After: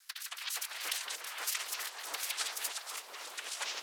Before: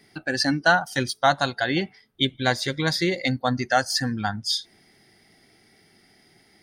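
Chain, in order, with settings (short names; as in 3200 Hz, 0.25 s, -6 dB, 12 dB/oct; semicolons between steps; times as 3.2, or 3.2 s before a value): tracing distortion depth 0.42 ms; bell 1900 Hz -11.5 dB 0.78 oct; limiter -18 dBFS, peak gain reduction 11 dB; negative-ratio compressor -33 dBFS, ratio -0.5; noise vocoder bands 4; ladder high-pass 1100 Hz, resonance 25%; echo with dull and thin repeats by turns 0.282 s, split 2300 Hz, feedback 55%, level -4.5 dB; echoes that change speed 0.302 s, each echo -7 st, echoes 3; speed mistake 45 rpm record played at 78 rpm; mismatched tape noise reduction decoder only; gain +5 dB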